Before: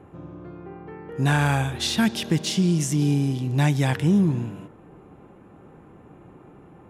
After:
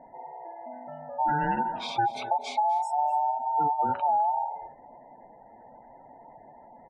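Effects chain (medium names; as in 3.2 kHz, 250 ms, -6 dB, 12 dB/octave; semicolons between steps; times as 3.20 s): every band turned upside down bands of 1 kHz; dynamic bell 6.1 kHz, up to -5 dB, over -43 dBFS, Q 1.8; flange 0.66 Hz, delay 7.1 ms, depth 2.3 ms, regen -73%; spectral gate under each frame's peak -20 dB strong; delay 250 ms -17.5 dB; level-controlled noise filter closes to 1.9 kHz, open at -22.5 dBFS; compression, threshold -23 dBFS, peak gain reduction 4.5 dB; treble shelf 2 kHz -9.5 dB; trim +3 dB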